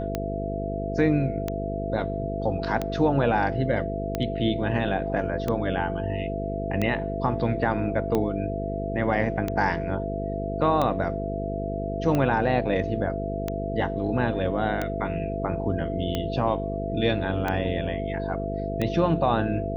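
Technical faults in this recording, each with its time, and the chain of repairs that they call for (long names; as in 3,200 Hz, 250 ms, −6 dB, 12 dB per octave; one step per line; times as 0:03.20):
mains buzz 50 Hz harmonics 10 −31 dBFS
scratch tick 45 rpm −13 dBFS
whistle 670 Hz −31 dBFS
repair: click removal
hum removal 50 Hz, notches 10
notch filter 670 Hz, Q 30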